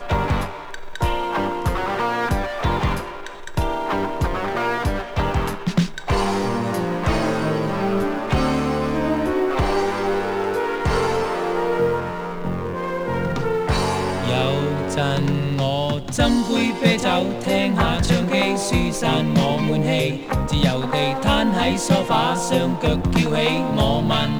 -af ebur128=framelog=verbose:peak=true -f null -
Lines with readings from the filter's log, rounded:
Integrated loudness:
  I:         -21.1 LUFS
  Threshold: -31.2 LUFS
Loudness range:
  LRA:         4.2 LU
  Threshold: -41.2 LUFS
  LRA low:   -23.5 LUFS
  LRA high:  -19.3 LUFS
True peak:
  Peak:       -4.1 dBFS